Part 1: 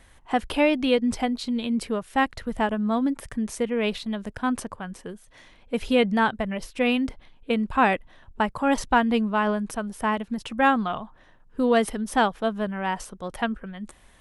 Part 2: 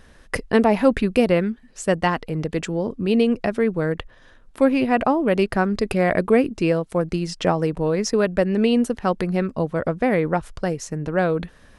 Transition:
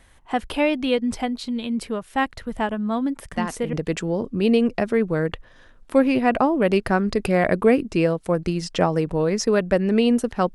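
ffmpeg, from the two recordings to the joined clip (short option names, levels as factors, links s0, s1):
-filter_complex "[1:a]asplit=2[s0][s1];[0:a]apad=whole_dur=10.54,atrim=end=10.54,atrim=end=3.732[s2];[s1]atrim=start=2.388:end=9.2[s3];[s0]atrim=start=1.98:end=2.39,asetpts=PTS-STARTPTS,volume=0.447,afade=t=in:d=0.004:c=hsin,afade=t=out:st=0.406:d=0.004:c=hsin,adelay=3320[s4];[s2][s3]acrossfade=d=0.004:c1=hsin:c2=hsin[s5];[s5][s4]amix=inputs=2:normalize=0"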